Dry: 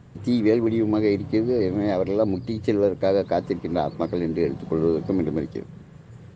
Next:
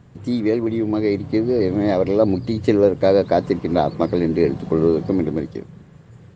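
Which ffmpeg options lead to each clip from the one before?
ffmpeg -i in.wav -af "dynaudnorm=framelen=230:gausssize=13:maxgain=7.5dB" out.wav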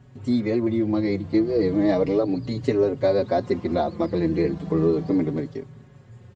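ffmpeg -i in.wav -filter_complex "[0:a]alimiter=limit=-7dB:level=0:latency=1:release=243,asplit=2[link_01][link_02];[link_02]adelay=4.9,afreqshift=-0.35[link_03];[link_01][link_03]amix=inputs=2:normalize=1" out.wav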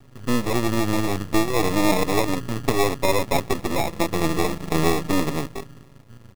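ffmpeg -i in.wav -af "acrusher=samples=29:mix=1:aa=0.000001,aeval=exprs='max(val(0),0)':channel_layout=same,volume=4dB" out.wav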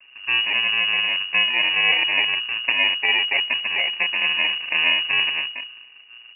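ffmpeg -i in.wav -af "lowpass=frequency=2500:width_type=q:width=0.5098,lowpass=frequency=2500:width_type=q:width=0.6013,lowpass=frequency=2500:width_type=q:width=0.9,lowpass=frequency=2500:width_type=q:width=2.563,afreqshift=-2900" out.wav

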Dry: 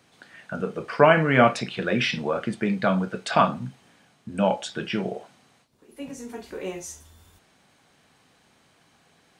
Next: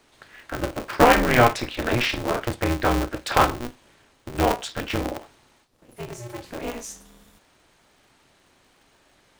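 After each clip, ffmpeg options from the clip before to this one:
ffmpeg -i in.wav -af "aeval=exprs='val(0)*sgn(sin(2*PI*120*n/s))':channel_layout=same,volume=1dB" out.wav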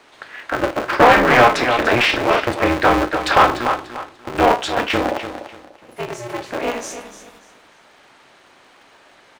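ffmpeg -i in.wav -filter_complex "[0:a]aecho=1:1:294|588|882:0.251|0.0653|0.017,asplit=2[link_01][link_02];[link_02]highpass=frequency=720:poles=1,volume=20dB,asoftclip=type=tanh:threshold=-1dB[link_03];[link_01][link_03]amix=inputs=2:normalize=0,lowpass=frequency=2100:poles=1,volume=-6dB" out.wav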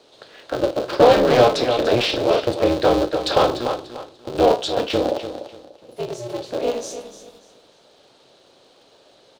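ffmpeg -i in.wav -af "equalizer=frequency=125:width_type=o:width=1:gain=5,equalizer=frequency=500:width_type=o:width=1:gain=10,equalizer=frequency=1000:width_type=o:width=1:gain=-4,equalizer=frequency=2000:width_type=o:width=1:gain=-11,equalizer=frequency=4000:width_type=o:width=1:gain=10,volume=-5.5dB" out.wav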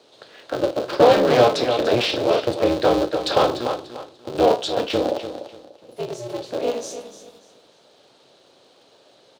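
ffmpeg -i in.wav -af "highpass=82,volume=-1dB" out.wav

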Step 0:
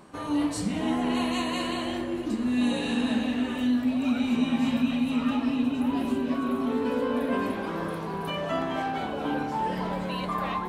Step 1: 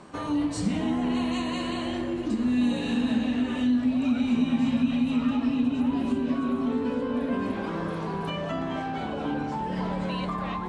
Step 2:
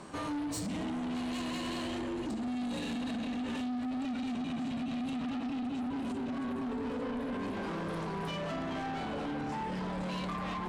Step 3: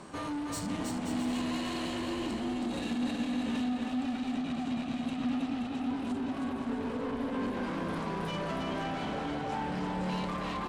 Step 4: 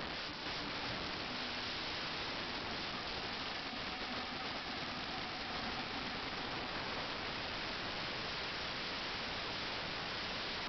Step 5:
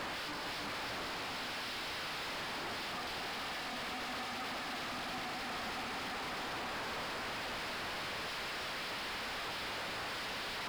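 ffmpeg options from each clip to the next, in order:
ffmpeg -i in.wav -filter_complex "[0:a]lowpass=frequency=8700:width=0.5412,lowpass=frequency=8700:width=1.3066,acrossover=split=260[link_01][link_02];[link_02]acompressor=threshold=-34dB:ratio=6[link_03];[link_01][link_03]amix=inputs=2:normalize=0,volume=3.5dB" out.wav
ffmpeg -i in.wav -af "highshelf=frequency=6500:gain=7.5,alimiter=limit=-22dB:level=0:latency=1:release=75,asoftclip=type=tanh:threshold=-33dB" out.wav
ffmpeg -i in.wav -af "aecho=1:1:320|528|663.2|751.1|808.2:0.631|0.398|0.251|0.158|0.1" out.wav
ffmpeg -i in.wav -af "alimiter=level_in=12dB:limit=-24dB:level=0:latency=1:release=145,volume=-12dB,aresample=11025,aeval=exprs='(mod(158*val(0)+1,2)-1)/158':channel_layout=same,aresample=44100,volume=7.5dB" out.wav
ffmpeg -i in.wav -filter_complex "[0:a]asplit=2[link_01][link_02];[link_02]highpass=frequency=720:poles=1,volume=35dB,asoftclip=type=tanh:threshold=-31dB[link_03];[link_01][link_03]amix=inputs=2:normalize=0,lowpass=frequency=3500:poles=1,volume=-6dB,volume=-3.5dB" out.wav

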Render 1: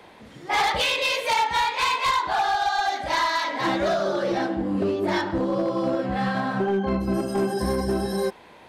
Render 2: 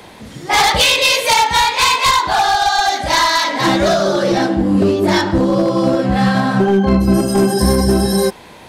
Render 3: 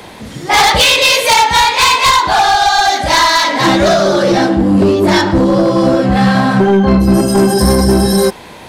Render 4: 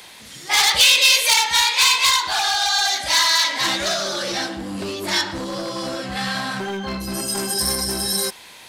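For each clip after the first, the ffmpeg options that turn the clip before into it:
ffmpeg -i in.wav -af "bass=frequency=250:gain=6,treble=frequency=4000:gain=9,volume=8.5dB" out.wav
ffmpeg -i in.wav -af "acontrast=63,volume=-1dB" out.wav
ffmpeg -i in.wav -af "tiltshelf=frequency=1300:gain=-10,volume=-10.5dB" out.wav

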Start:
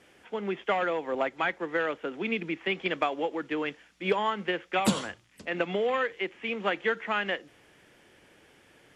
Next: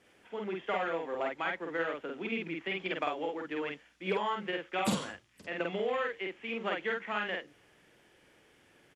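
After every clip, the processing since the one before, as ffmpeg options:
ffmpeg -i in.wav -filter_complex "[0:a]asplit=2[link_01][link_02];[link_02]adelay=48,volume=-2dB[link_03];[link_01][link_03]amix=inputs=2:normalize=0,volume=-7dB" out.wav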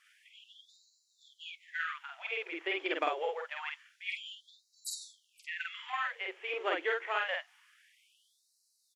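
ffmpeg -i in.wav -af "afftfilt=real='re*gte(b*sr/1024,280*pow(3900/280,0.5+0.5*sin(2*PI*0.26*pts/sr)))':imag='im*gte(b*sr/1024,280*pow(3900/280,0.5+0.5*sin(2*PI*0.26*pts/sr)))':win_size=1024:overlap=0.75,volume=1.5dB" out.wav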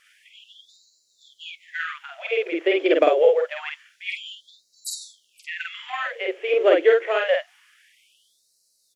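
ffmpeg -i in.wav -af "lowshelf=frequency=720:width_type=q:width=3:gain=7,volume=8.5dB" out.wav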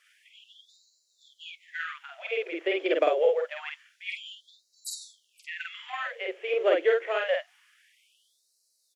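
ffmpeg -i in.wav -af "highpass=370,volume=-5.5dB" out.wav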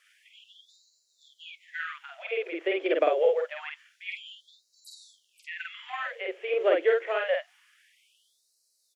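ffmpeg -i in.wav -filter_complex "[0:a]acrossover=split=3400[link_01][link_02];[link_02]acompressor=threshold=-54dB:ratio=4:attack=1:release=60[link_03];[link_01][link_03]amix=inputs=2:normalize=0" out.wav

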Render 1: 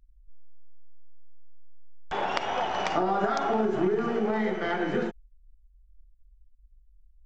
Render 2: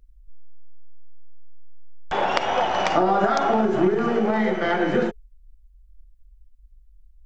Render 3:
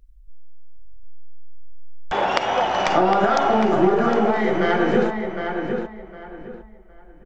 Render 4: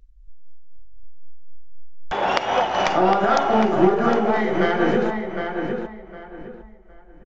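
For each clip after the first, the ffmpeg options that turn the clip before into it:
ffmpeg -i in.wav -af "equalizer=frequency=520:width=2.8:gain=3.5,bandreject=frequency=430:width=12,volume=6dB" out.wav
ffmpeg -i in.wav -filter_complex "[0:a]asplit=2[link_01][link_02];[link_02]adelay=759,lowpass=frequency=2800:poles=1,volume=-5.5dB,asplit=2[link_03][link_04];[link_04]adelay=759,lowpass=frequency=2800:poles=1,volume=0.26,asplit=2[link_05][link_06];[link_06]adelay=759,lowpass=frequency=2800:poles=1,volume=0.26[link_07];[link_01][link_03][link_05][link_07]amix=inputs=4:normalize=0,volume=1.5dB" out.wav
ffmpeg -i in.wav -af "tremolo=f=3.9:d=0.4,aresample=16000,aresample=44100,volume=1.5dB" out.wav

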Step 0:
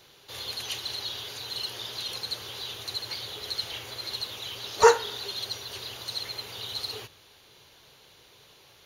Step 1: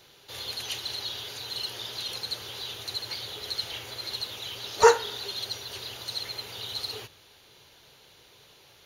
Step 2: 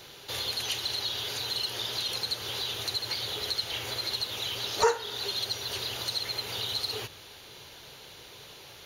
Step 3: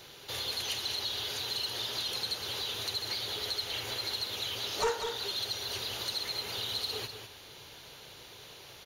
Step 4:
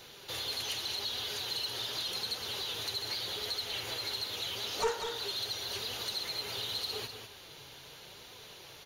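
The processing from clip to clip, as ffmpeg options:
ffmpeg -i in.wav -af "bandreject=frequency=1100:width=21" out.wav
ffmpeg -i in.wav -af "acompressor=threshold=-40dB:ratio=2,volume=7.5dB" out.wav
ffmpeg -i in.wav -af "asoftclip=type=tanh:threshold=-21dB,aecho=1:1:196:0.398,volume=-2.5dB" out.wav
ffmpeg -i in.wav -filter_complex "[0:a]flanger=delay=3.8:depth=3.9:regen=66:speed=0.84:shape=triangular,asplit=2[link_01][link_02];[link_02]asoftclip=type=tanh:threshold=-36.5dB,volume=-5.5dB[link_03];[link_01][link_03]amix=inputs=2:normalize=0" out.wav

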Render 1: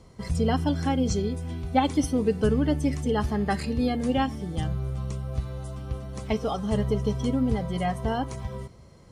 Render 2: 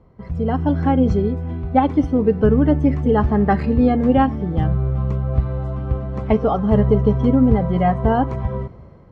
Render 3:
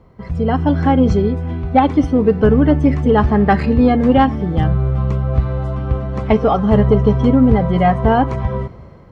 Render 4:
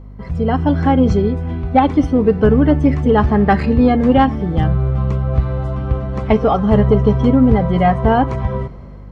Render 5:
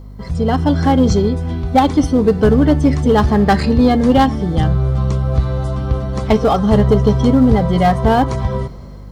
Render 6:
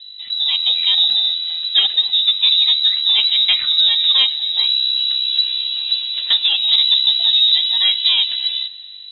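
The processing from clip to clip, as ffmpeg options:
ffmpeg -i in.wav -af "lowpass=1500,dynaudnorm=framelen=260:gausssize=5:maxgain=11.5dB" out.wav
ffmpeg -i in.wav -af "tiltshelf=frequency=1300:gain=-3,asoftclip=type=tanh:threshold=-7dB,volume=6.5dB" out.wav
ffmpeg -i in.wav -af "aeval=exprs='val(0)+0.02*(sin(2*PI*50*n/s)+sin(2*PI*2*50*n/s)/2+sin(2*PI*3*50*n/s)/3+sin(2*PI*4*50*n/s)/4+sin(2*PI*5*50*n/s)/5)':channel_layout=same" out.wav
ffmpeg -i in.wav -filter_complex "[0:a]asplit=2[link_01][link_02];[link_02]volume=13.5dB,asoftclip=hard,volume=-13.5dB,volume=-10.5dB[link_03];[link_01][link_03]amix=inputs=2:normalize=0,aexciter=amount=3.5:drive=6.7:freq=3600,volume=-1dB" out.wav
ffmpeg -i in.wav -af "lowpass=frequency=3400:width_type=q:width=0.5098,lowpass=frequency=3400:width_type=q:width=0.6013,lowpass=frequency=3400:width_type=q:width=0.9,lowpass=frequency=3400:width_type=q:width=2.563,afreqshift=-4000,equalizer=frequency=820:width=2.8:gain=-3.5,volume=-3dB" out.wav

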